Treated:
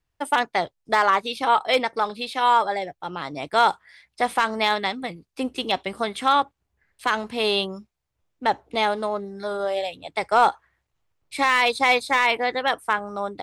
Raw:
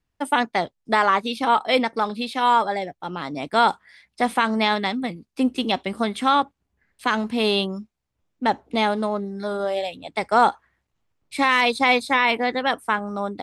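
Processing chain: peaking EQ 230 Hz -9.5 dB 0.69 oct; hard clipper -9 dBFS, distortion -25 dB

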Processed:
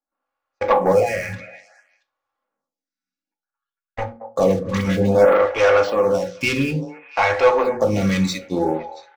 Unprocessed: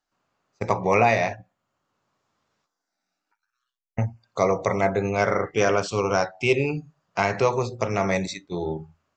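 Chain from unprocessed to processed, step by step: treble shelf 4.2 kHz -7.5 dB; hum notches 60/120/180/240/300/360/420/480 Hz; comb 3.6 ms, depth 51%; waveshaping leveller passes 3; 0.92–1.33 s: static phaser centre 990 Hz, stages 6; 4.59–5.15 s: phase dispersion highs, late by 101 ms, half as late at 980 Hz; 5.94–6.41 s: compression 3:1, threshold -18 dBFS, peak gain reduction 5 dB; repeats whose band climbs or falls 226 ms, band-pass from 720 Hz, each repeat 1.4 oct, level -10 dB; reverberation RT60 0.30 s, pre-delay 3 ms, DRR 6.5 dB; lamp-driven phase shifter 0.58 Hz; trim -1 dB

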